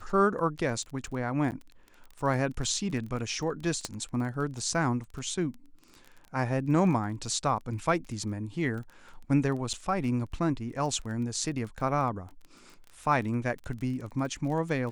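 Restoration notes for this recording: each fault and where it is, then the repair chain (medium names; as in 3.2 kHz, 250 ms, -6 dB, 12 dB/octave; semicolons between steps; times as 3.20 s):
crackle 23 per s -37 dBFS
1.51–1.52 s: dropout 9.5 ms
3.85 s: pop -17 dBFS
9.73–9.74 s: dropout 6.9 ms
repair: de-click; interpolate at 1.51 s, 9.5 ms; interpolate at 9.73 s, 6.9 ms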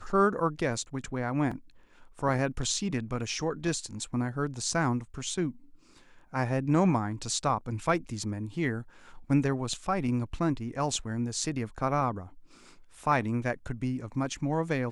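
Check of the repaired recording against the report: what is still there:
nothing left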